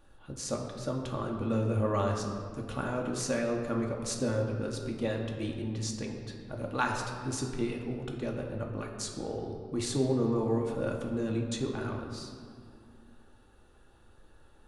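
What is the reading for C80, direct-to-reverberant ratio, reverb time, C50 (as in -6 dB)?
5.5 dB, 0.5 dB, 2.3 s, 4.5 dB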